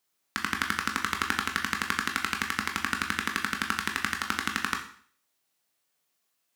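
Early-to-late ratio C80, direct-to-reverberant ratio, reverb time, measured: 13.0 dB, 2.5 dB, 0.50 s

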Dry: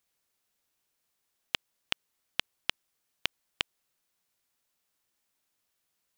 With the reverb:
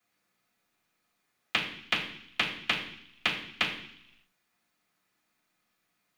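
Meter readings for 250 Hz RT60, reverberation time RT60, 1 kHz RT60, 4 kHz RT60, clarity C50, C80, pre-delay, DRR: 0.90 s, 0.70 s, 0.70 s, 1.0 s, 7.0 dB, 10.0 dB, 3 ms, −15.0 dB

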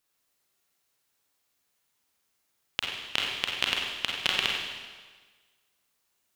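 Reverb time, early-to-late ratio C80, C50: 1.4 s, 2.5 dB, 1.0 dB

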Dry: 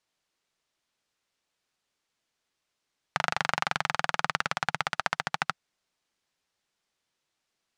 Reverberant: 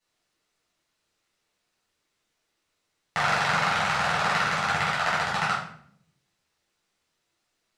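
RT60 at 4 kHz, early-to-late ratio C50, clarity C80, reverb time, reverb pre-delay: 0.45 s, 3.0 dB, 7.5 dB, 0.60 s, 6 ms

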